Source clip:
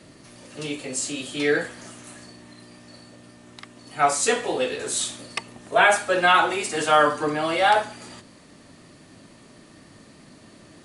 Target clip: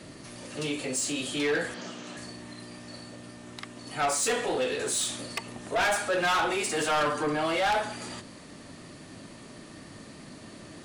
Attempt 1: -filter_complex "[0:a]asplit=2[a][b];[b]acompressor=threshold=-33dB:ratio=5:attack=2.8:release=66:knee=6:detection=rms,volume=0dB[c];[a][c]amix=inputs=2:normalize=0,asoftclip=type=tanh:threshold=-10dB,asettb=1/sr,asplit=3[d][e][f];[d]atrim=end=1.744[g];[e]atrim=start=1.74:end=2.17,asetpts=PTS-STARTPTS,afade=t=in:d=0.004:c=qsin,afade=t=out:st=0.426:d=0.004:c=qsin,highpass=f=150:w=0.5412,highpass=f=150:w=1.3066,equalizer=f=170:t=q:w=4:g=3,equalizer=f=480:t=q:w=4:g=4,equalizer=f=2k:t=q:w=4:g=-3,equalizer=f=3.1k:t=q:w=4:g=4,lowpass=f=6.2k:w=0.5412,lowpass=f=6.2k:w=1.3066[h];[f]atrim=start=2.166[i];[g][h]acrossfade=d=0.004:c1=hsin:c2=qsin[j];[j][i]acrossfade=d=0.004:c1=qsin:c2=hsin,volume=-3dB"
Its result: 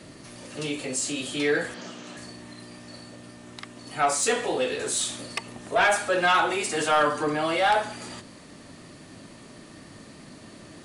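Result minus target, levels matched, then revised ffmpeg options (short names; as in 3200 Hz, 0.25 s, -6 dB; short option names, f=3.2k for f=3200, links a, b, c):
soft clip: distortion -9 dB
-filter_complex "[0:a]asplit=2[a][b];[b]acompressor=threshold=-33dB:ratio=5:attack=2.8:release=66:knee=6:detection=rms,volume=0dB[c];[a][c]amix=inputs=2:normalize=0,asoftclip=type=tanh:threshold=-19dB,asettb=1/sr,asplit=3[d][e][f];[d]atrim=end=1.744[g];[e]atrim=start=1.74:end=2.17,asetpts=PTS-STARTPTS,afade=t=in:d=0.004:c=qsin,afade=t=out:st=0.426:d=0.004:c=qsin,highpass=f=150:w=0.5412,highpass=f=150:w=1.3066,equalizer=f=170:t=q:w=4:g=3,equalizer=f=480:t=q:w=4:g=4,equalizer=f=2k:t=q:w=4:g=-3,equalizer=f=3.1k:t=q:w=4:g=4,lowpass=f=6.2k:w=0.5412,lowpass=f=6.2k:w=1.3066[h];[f]atrim=start=2.166[i];[g][h]acrossfade=d=0.004:c1=hsin:c2=qsin[j];[j][i]acrossfade=d=0.004:c1=qsin:c2=hsin,volume=-3dB"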